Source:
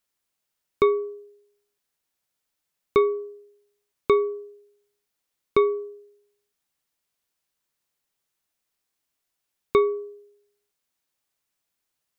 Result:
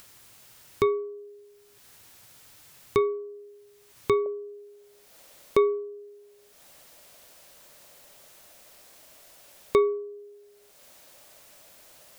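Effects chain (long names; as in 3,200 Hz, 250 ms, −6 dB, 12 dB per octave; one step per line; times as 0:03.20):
parametric band 110 Hz +11.5 dB 0.54 octaves, from 0:04.26 590 Hz
upward compression, threshold −24 dBFS
level −4 dB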